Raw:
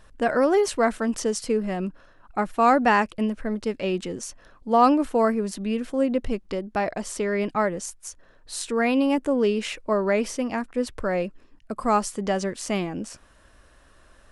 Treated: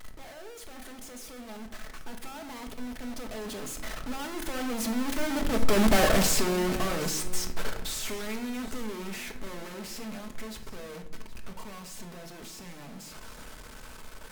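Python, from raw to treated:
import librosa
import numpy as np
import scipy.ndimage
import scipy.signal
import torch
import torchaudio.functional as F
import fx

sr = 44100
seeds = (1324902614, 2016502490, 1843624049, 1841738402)

p1 = np.sign(x) * np.sqrt(np.mean(np.square(x)))
p2 = fx.doppler_pass(p1, sr, speed_mps=44, closest_m=9.4, pass_at_s=5.88)
p3 = fx.rider(p2, sr, range_db=5, speed_s=0.5)
p4 = p2 + F.gain(torch.from_numpy(p3), -2.5).numpy()
p5 = fx.transient(p4, sr, attack_db=-12, sustain_db=11)
p6 = p5 + fx.echo_single(p5, sr, ms=769, db=-16.5, dry=0)
y = fx.room_shoebox(p6, sr, seeds[0], volume_m3=920.0, walls='furnished', distance_m=1.5)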